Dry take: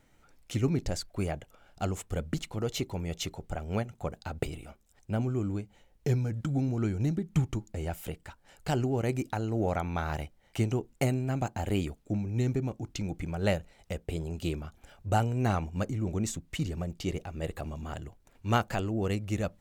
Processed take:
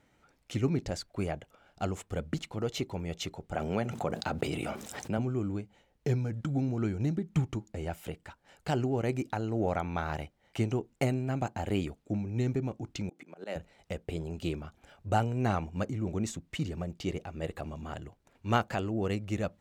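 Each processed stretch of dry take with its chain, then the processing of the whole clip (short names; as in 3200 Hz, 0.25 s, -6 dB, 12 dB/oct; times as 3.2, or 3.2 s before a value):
3.54–5.18 HPF 130 Hz + fast leveller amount 70%
13.09–13.56 HPF 230 Hz 24 dB/oct + auto swell 0.179 s
whole clip: HPF 100 Hz 6 dB/oct; high shelf 7600 Hz -10 dB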